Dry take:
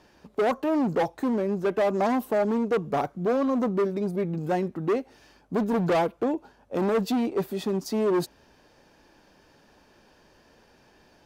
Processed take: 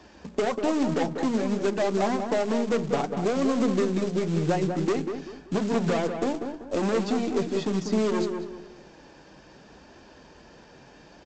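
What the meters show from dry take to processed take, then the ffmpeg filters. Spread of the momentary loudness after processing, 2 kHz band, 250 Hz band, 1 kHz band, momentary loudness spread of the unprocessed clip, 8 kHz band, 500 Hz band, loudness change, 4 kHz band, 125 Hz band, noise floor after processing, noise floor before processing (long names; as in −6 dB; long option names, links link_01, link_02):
6 LU, +1.0 dB, +1.0 dB, −1.5 dB, 5 LU, +6.0 dB, −0.5 dB, 0.0 dB, +4.0 dB, +2.5 dB, −52 dBFS, −60 dBFS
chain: -filter_complex "[0:a]highpass=45,equalizer=frequency=99:width=6.1:gain=-6,bandreject=frequency=60:width_type=h:width=6,bandreject=frequency=120:width_type=h:width=6,bandreject=frequency=180:width_type=h:width=6,bandreject=frequency=240:width_type=h:width=6,bandreject=frequency=300:width_type=h:width=6,bandreject=frequency=360:width_type=h:width=6,bandreject=frequency=420:width_type=h:width=6,aeval=exprs='0.2*(cos(1*acos(clip(val(0)/0.2,-1,1)))-cos(1*PI/2))+0.00316*(cos(5*acos(clip(val(0)/0.2,-1,1)))-cos(5*PI/2))+0.00708*(cos(8*acos(clip(val(0)/0.2,-1,1)))-cos(8*PI/2))':channel_layout=same,lowshelf=frequency=270:gain=5.5,acrossover=split=140|2000[link_01][link_02][link_03];[link_01]acompressor=threshold=-48dB:ratio=4[link_04];[link_02]acompressor=threshold=-30dB:ratio=4[link_05];[link_03]acompressor=threshold=-45dB:ratio=4[link_06];[link_04][link_05][link_06]amix=inputs=3:normalize=0,flanger=delay=2.7:depth=4.9:regen=-48:speed=0.6:shape=triangular,aresample=16000,acrusher=bits=4:mode=log:mix=0:aa=0.000001,aresample=44100,asplit=2[link_07][link_08];[link_08]adelay=193,lowpass=frequency=1700:poles=1,volume=-6dB,asplit=2[link_09][link_10];[link_10]adelay=193,lowpass=frequency=1700:poles=1,volume=0.34,asplit=2[link_11][link_12];[link_12]adelay=193,lowpass=frequency=1700:poles=1,volume=0.34,asplit=2[link_13][link_14];[link_14]adelay=193,lowpass=frequency=1700:poles=1,volume=0.34[link_15];[link_07][link_09][link_11][link_13][link_15]amix=inputs=5:normalize=0,volume=9dB"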